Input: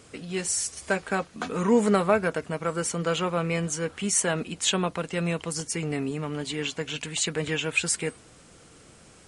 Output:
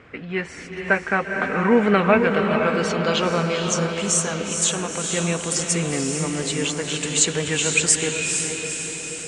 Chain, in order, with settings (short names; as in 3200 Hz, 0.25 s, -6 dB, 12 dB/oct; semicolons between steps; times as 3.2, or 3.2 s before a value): 3.41–5.1 compressor, threshold -27 dBFS, peak gain reduction 8 dB; low-pass sweep 2000 Hz -> 7800 Hz, 1.46–4.2; diffused feedback echo 0.467 s, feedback 60%, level -4.5 dB; gain +3.5 dB